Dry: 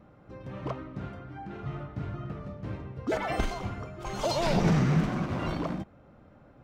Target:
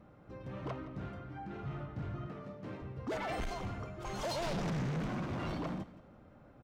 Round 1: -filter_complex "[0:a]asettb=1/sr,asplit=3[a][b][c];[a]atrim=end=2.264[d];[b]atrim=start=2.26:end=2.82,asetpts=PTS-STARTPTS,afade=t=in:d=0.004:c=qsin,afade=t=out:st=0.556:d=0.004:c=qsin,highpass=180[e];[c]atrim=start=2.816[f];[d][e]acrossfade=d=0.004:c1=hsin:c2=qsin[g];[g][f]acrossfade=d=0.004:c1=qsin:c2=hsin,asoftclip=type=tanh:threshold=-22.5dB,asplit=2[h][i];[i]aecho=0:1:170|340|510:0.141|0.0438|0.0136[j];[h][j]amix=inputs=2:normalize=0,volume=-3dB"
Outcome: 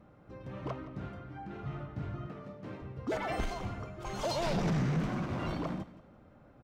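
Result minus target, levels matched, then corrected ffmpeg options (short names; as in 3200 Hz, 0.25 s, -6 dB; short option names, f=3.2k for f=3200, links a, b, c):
soft clip: distortion -7 dB
-filter_complex "[0:a]asettb=1/sr,asplit=3[a][b][c];[a]atrim=end=2.264[d];[b]atrim=start=2.26:end=2.82,asetpts=PTS-STARTPTS,afade=t=in:d=0.004:c=qsin,afade=t=out:st=0.556:d=0.004:c=qsin,highpass=180[e];[c]atrim=start=2.816[f];[d][e]acrossfade=d=0.004:c1=hsin:c2=qsin[g];[g][f]acrossfade=d=0.004:c1=qsin:c2=hsin,asoftclip=type=tanh:threshold=-30dB,asplit=2[h][i];[i]aecho=0:1:170|340|510:0.141|0.0438|0.0136[j];[h][j]amix=inputs=2:normalize=0,volume=-3dB"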